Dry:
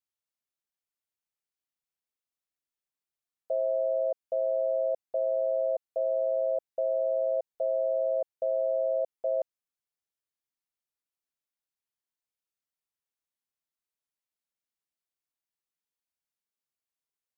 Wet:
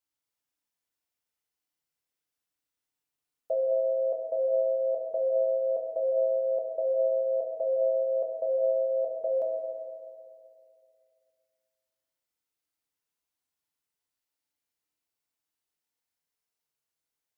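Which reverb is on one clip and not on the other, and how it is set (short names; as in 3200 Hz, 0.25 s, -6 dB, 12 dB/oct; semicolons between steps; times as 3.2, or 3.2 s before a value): FDN reverb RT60 2.4 s, low-frequency decay 0.9×, high-frequency decay 0.9×, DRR -1 dB; gain +1 dB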